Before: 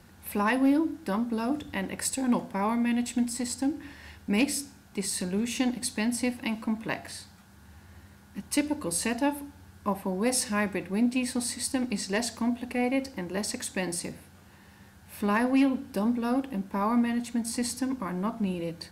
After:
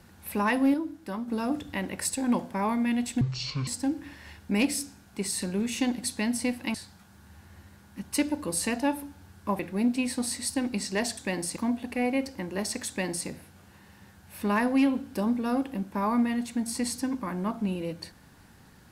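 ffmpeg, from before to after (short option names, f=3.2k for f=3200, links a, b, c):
-filter_complex "[0:a]asplit=9[a][b][c][d][e][f][g][h][i];[a]atrim=end=0.742[j];[b]atrim=start=0.738:end=1.282,asetpts=PTS-STARTPTS,volume=-5.5dB[k];[c]atrim=start=1.278:end=3.214[l];[d]atrim=start=3.21:end=3.46,asetpts=PTS-STARTPTS,asetrate=23814,aresample=44100[m];[e]atrim=start=3.456:end=6.532[n];[f]atrim=start=7.128:end=9.982[o];[g]atrim=start=10.768:end=12.352[p];[h]atrim=start=13.668:end=14.062[q];[i]atrim=start=12.348[r];[j][k]acrossfade=d=0.004:c1=hsin:c2=hsin[s];[s][l]acrossfade=d=0.004:c1=hsin:c2=hsin[t];[t][m]acrossfade=d=0.004:c1=hsin:c2=hsin[u];[u][n]acrossfade=d=0.004:c1=hsin:c2=hsin[v];[v][o]acrossfade=d=0.004:c1=hsin:c2=hsin[w];[w][p]acrossfade=d=0.004:c1=hsin:c2=hsin[x];[x][q]acrossfade=d=0.004:c1=hsin:c2=hsin[y];[y][r]acrossfade=d=0.004:c1=hsin:c2=hsin"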